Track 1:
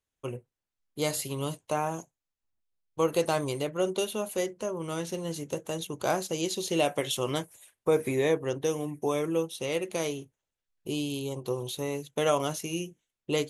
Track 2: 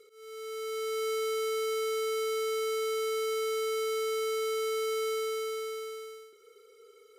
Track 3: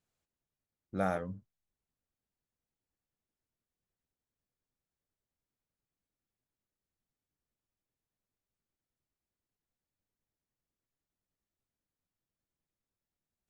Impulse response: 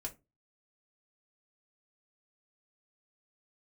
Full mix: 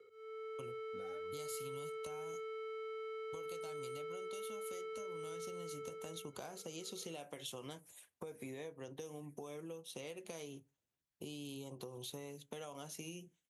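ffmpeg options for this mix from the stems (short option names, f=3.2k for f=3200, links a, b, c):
-filter_complex "[0:a]acompressor=threshold=-35dB:ratio=1.5,adelay=350,volume=-5dB,asplit=2[a][b];[b]volume=-16dB[c];[1:a]acrossover=split=2800[d][e];[e]acompressor=threshold=-58dB:ratio=4:attack=1:release=60[f];[d][f]amix=inputs=2:normalize=0,acrossover=split=280 2800:gain=0.224 1 0.0794[g][h][i];[g][h][i]amix=inputs=3:normalize=0,volume=-2.5dB[j];[2:a]aphaser=in_gain=1:out_gain=1:delay=4.2:decay=0.79:speed=0.55:type=sinusoidal,volume=-12dB[k];[a][k]amix=inputs=2:normalize=0,acompressor=threshold=-44dB:ratio=6,volume=0dB[l];[3:a]atrim=start_sample=2205[m];[c][m]afir=irnorm=-1:irlink=0[n];[j][l][n]amix=inputs=3:normalize=0,highpass=66,acrossover=split=130|3000[o][p][q];[p]acompressor=threshold=-44dB:ratio=6[r];[o][r][q]amix=inputs=3:normalize=0"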